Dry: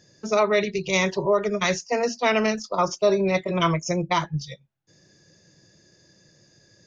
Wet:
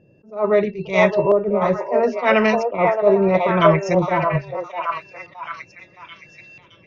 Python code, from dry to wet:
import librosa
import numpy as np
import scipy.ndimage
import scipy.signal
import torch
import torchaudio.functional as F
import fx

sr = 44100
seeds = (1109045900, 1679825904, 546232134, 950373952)

p1 = fx.high_shelf(x, sr, hz=3500.0, db=8.5)
p2 = p1 + 10.0 ** (-45.0 / 20.0) * np.sin(2.0 * np.pi * 2700.0 * np.arange(len(p1)) / sr)
p3 = fx.filter_lfo_lowpass(p2, sr, shape='saw_up', hz=0.76, low_hz=520.0, high_hz=2600.0, q=1.0)
p4 = p3 + fx.echo_stepped(p3, sr, ms=618, hz=690.0, octaves=0.7, feedback_pct=70, wet_db=-1.0, dry=0)
p5 = fx.attack_slew(p4, sr, db_per_s=180.0)
y = p5 * librosa.db_to_amplitude(5.0)